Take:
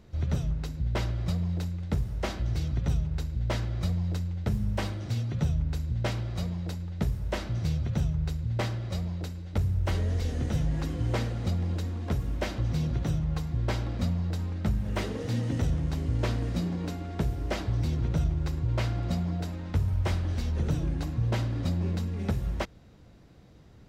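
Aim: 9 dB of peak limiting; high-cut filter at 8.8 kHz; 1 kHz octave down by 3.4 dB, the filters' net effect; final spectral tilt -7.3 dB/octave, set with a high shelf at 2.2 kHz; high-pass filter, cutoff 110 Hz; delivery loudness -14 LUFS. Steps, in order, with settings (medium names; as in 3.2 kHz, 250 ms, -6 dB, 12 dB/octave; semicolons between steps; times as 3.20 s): high-pass 110 Hz; low-pass 8.8 kHz; peaking EQ 1 kHz -4 dB; treble shelf 2.2 kHz -3 dB; trim +21.5 dB; peak limiter -4 dBFS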